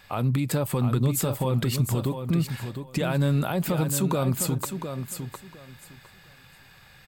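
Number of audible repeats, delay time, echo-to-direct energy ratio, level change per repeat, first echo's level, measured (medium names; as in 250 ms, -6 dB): 2, 708 ms, -8.0 dB, -14.5 dB, -8.0 dB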